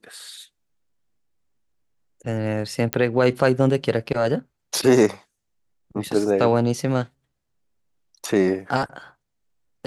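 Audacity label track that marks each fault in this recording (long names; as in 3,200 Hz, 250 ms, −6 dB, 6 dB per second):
2.930000	2.930000	click −3 dBFS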